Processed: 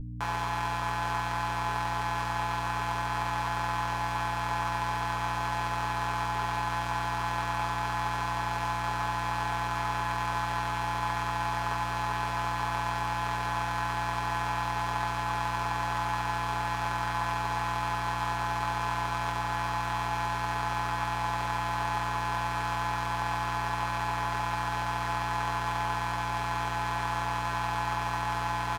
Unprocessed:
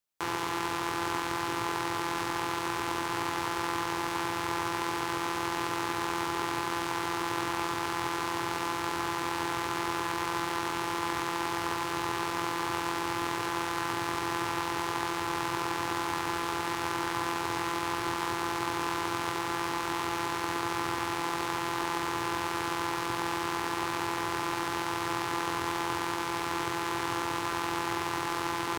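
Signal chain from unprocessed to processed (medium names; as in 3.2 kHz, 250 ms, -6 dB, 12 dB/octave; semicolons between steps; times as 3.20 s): high-pass 590 Hz 24 dB/octave; hum 60 Hz, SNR 12 dB; tilt EQ -2.5 dB/octave; comb 7.1 ms, depth 78%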